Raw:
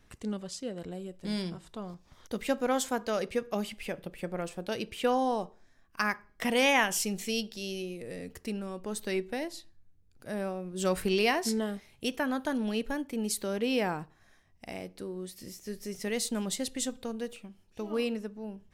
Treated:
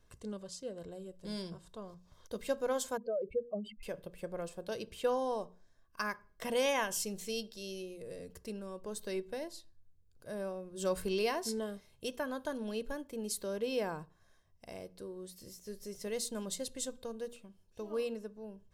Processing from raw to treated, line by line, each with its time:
2.97–3.83 spectral contrast raised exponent 2.7
whole clip: bell 2200 Hz -7.5 dB 0.86 oct; notches 60/120/180/240 Hz; comb 1.9 ms, depth 41%; gain -5.5 dB

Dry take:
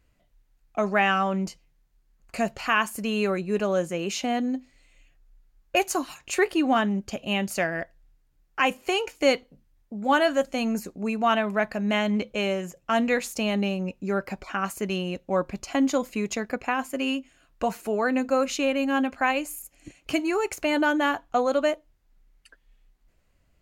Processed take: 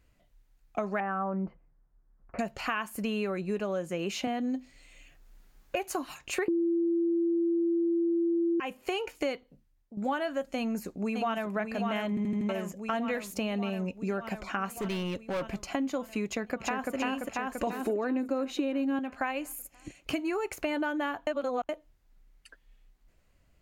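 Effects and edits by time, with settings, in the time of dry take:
1–2.39 LPF 1500 Hz 24 dB/oct
4.27–5.84 three-band squash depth 40%
6.48–8.6 bleep 338 Hz -8 dBFS
9.18–9.97 fade out, to -11.5 dB
10.56–11.53 echo throw 0.59 s, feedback 70%, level -5.5 dB
12.09 stutter in place 0.08 s, 5 plays
14.74–15.58 hard clip -28 dBFS
16.26–16.94 echo throw 0.34 s, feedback 60%, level -0.5 dB
17.67–18.99 small resonant body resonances 330/3800 Hz, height 15 dB, ringing for 30 ms
21.27–21.69 reverse
whole clip: dynamic EQ 6600 Hz, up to -7 dB, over -45 dBFS, Q 0.77; compressor 6:1, threshold -28 dBFS

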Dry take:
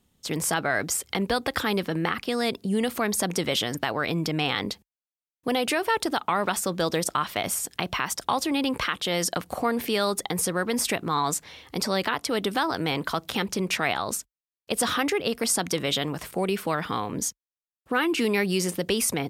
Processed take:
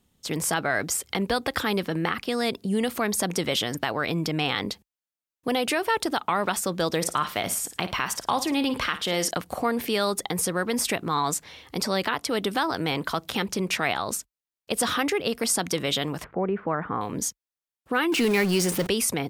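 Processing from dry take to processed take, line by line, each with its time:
6.96–9.31 flutter echo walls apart 9.3 m, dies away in 0.28 s
16.24–17.01 LPF 1700 Hz 24 dB/oct
18.12–18.87 zero-crossing step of -27.5 dBFS

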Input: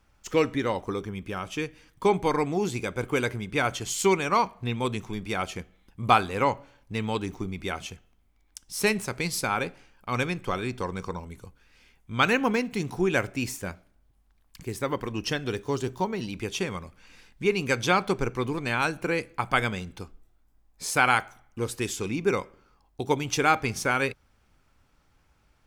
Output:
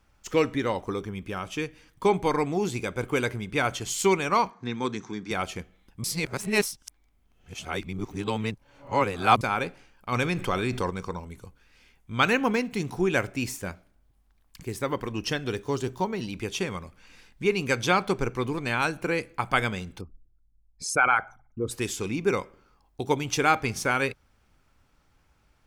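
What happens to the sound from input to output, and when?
4.5–5.31 speaker cabinet 170–6900 Hz, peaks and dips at 290 Hz +4 dB, 600 Hz -10 dB, 1600 Hz +5 dB, 2800 Hz -9 dB, 6100 Hz +7 dB
6.04–9.41 reverse
10.12–10.9 fast leveller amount 50%
20.01–21.71 formant sharpening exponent 2

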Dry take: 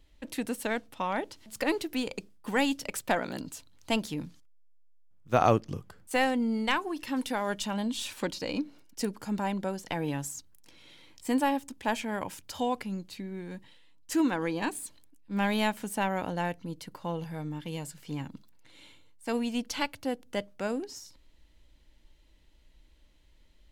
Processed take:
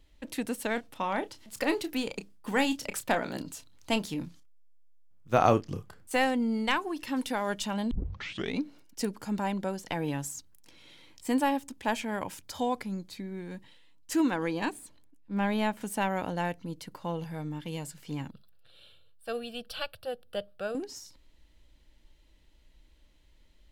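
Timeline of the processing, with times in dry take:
0.74–6.15 doubler 30 ms -11.5 dB
7.91 tape start 0.70 s
12.43–13.38 notch 2800 Hz, Q 6.8
14.71–15.81 high shelf 2500 Hz -9 dB
18.31–20.75 fixed phaser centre 1400 Hz, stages 8

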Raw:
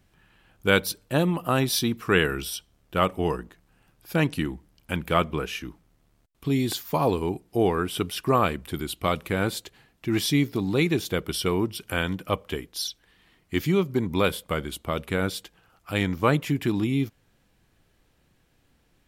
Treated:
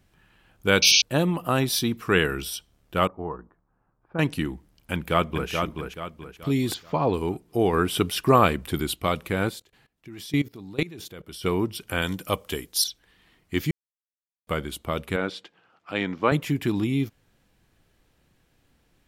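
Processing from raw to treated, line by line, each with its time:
0.82–1.02 painted sound noise 2200–6400 Hz -17 dBFS
3.07–4.19 ladder low-pass 1400 Hz, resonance 40%
4.92–5.5 echo throw 0.43 s, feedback 40%, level -5 dB
6.74–7.14 air absorption 160 m
7.73–8.96 gain +4 dB
9.49–11.44 level quantiser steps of 20 dB
12.02–12.84 tone controls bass -1 dB, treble +11 dB
13.71–14.47 mute
15.16–16.32 BPF 210–3900 Hz

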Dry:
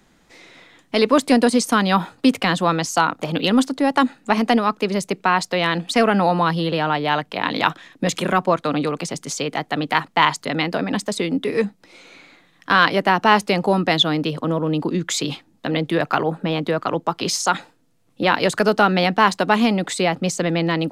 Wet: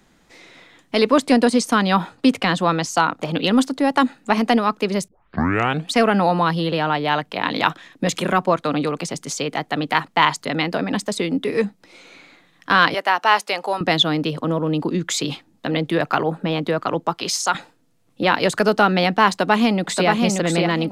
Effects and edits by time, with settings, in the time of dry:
1.1–3.53 high shelf 12000 Hz -9.5 dB
5.08 tape start 0.78 s
12.94–13.81 HPF 630 Hz
17.15–17.55 low shelf 430 Hz -8.5 dB
19.3–20.08 echo throw 0.58 s, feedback 20%, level -3 dB

